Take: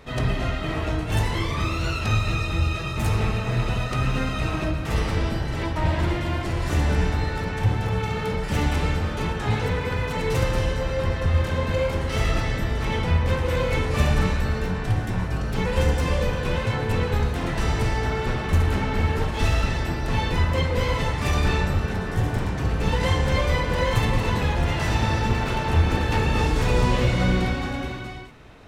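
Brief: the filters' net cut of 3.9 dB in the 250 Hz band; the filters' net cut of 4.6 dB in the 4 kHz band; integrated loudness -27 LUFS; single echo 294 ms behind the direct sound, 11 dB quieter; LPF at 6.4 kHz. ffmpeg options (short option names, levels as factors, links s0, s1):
-af "lowpass=6400,equalizer=f=250:t=o:g=-6,equalizer=f=4000:t=o:g=-5.5,aecho=1:1:294:0.282,volume=0.794"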